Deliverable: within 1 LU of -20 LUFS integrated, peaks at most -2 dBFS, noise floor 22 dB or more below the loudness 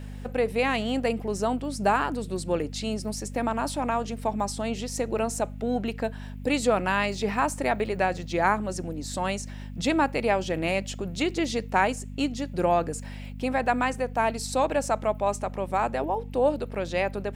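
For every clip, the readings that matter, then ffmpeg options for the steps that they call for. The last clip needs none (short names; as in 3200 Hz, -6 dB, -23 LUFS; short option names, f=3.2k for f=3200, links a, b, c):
hum 50 Hz; harmonics up to 250 Hz; hum level -35 dBFS; loudness -27.5 LUFS; peak -8.0 dBFS; loudness target -20.0 LUFS
-> -af "bandreject=f=50:t=h:w=4,bandreject=f=100:t=h:w=4,bandreject=f=150:t=h:w=4,bandreject=f=200:t=h:w=4,bandreject=f=250:t=h:w=4"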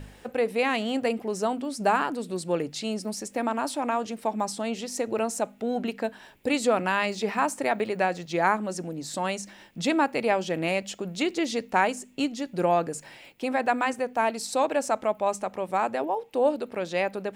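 hum none; loudness -27.5 LUFS; peak -8.5 dBFS; loudness target -20.0 LUFS
-> -af "volume=7.5dB,alimiter=limit=-2dB:level=0:latency=1"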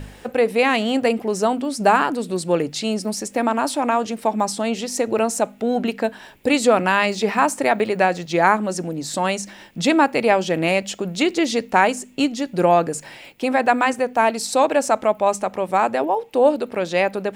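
loudness -20.0 LUFS; peak -2.0 dBFS; noise floor -44 dBFS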